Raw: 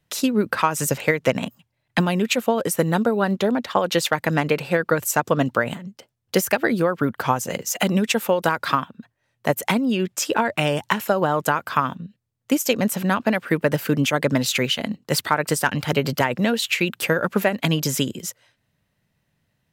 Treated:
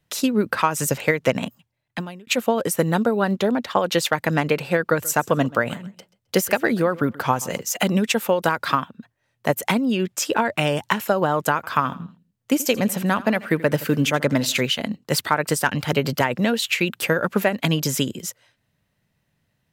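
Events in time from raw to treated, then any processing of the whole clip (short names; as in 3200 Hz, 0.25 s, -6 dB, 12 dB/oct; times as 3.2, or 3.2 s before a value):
1.46–2.27 fade out
4.91–7.6 feedback echo 0.132 s, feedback 24%, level -21 dB
11.55–14.61 feedback echo 82 ms, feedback 38%, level -18 dB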